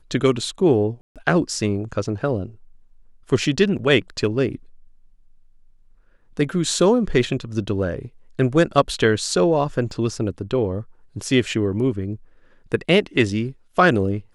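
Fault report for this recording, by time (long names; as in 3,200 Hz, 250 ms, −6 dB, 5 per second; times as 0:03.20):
0:01.01–0:01.16: drop-out 147 ms
0:03.78–0:03.79: drop-out 8.8 ms
0:09.91: drop-out 2.6 ms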